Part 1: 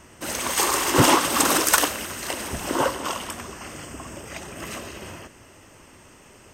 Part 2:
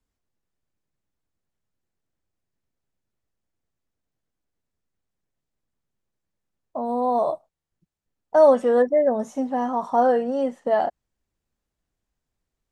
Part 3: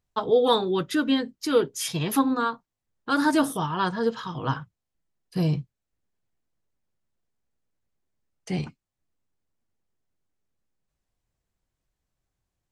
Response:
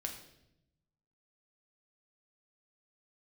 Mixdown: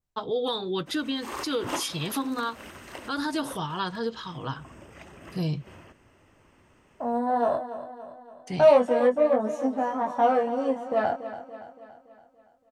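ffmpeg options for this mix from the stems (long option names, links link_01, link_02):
-filter_complex "[0:a]bass=frequency=250:gain=2,treble=frequency=4000:gain=-11,adelay=650,volume=-10dB[link_01];[1:a]aeval=exprs='0.501*(cos(1*acos(clip(val(0)/0.501,-1,1)))-cos(1*PI/2))+0.0316*(cos(6*acos(clip(val(0)/0.501,-1,1)))-cos(6*PI/2))':channel_layout=same,flanger=delay=18.5:depth=3:speed=0.2,highpass=110,adelay=250,volume=0dB,asplit=2[link_02][link_03];[link_03]volume=-12.5dB[link_04];[2:a]adynamicequalizer=threshold=0.00501:dfrequency=3900:dqfactor=1.2:tfrequency=3900:tqfactor=1.2:attack=5:release=100:ratio=0.375:range=3.5:mode=boostabove:tftype=bell,alimiter=limit=-15dB:level=0:latency=1:release=161,volume=-4.5dB,asplit=2[link_05][link_06];[link_06]apad=whole_len=317030[link_07];[link_01][link_07]sidechaincompress=threshold=-43dB:ratio=8:attack=25:release=105[link_08];[link_04]aecho=0:1:284|568|852|1136|1420|1704|1988|2272:1|0.52|0.27|0.141|0.0731|0.038|0.0198|0.0103[link_09];[link_08][link_02][link_05][link_09]amix=inputs=4:normalize=0"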